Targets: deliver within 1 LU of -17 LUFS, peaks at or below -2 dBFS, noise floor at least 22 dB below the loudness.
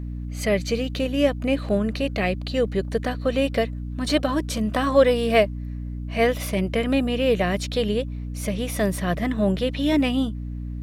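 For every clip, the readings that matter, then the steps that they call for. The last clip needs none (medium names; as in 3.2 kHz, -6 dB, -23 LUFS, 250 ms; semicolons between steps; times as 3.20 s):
hum 60 Hz; highest harmonic 300 Hz; hum level -28 dBFS; loudness -23.5 LUFS; peak level -5.5 dBFS; loudness target -17.0 LUFS
-> de-hum 60 Hz, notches 5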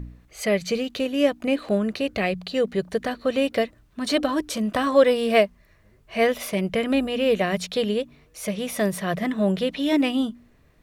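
hum not found; loudness -24.0 LUFS; peak level -6.0 dBFS; loudness target -17.0 LUFS
-> trim +7 dB; peak limiter -2 dBFS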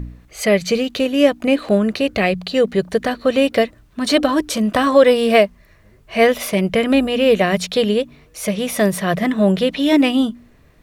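loudness -17.0 LUFS; peak level -2.0 dBFS; noise floor -50 dBFS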